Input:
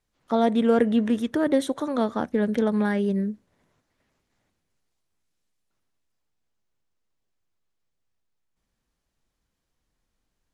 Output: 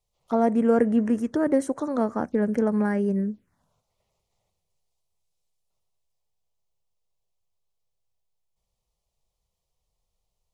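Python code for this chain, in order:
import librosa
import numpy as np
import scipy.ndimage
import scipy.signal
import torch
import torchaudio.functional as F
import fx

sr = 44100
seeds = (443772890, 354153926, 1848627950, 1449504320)

y = fx.env_phaser(x, sr, low_hz=270.0, high_hz=3600.0, full_db=-23.0)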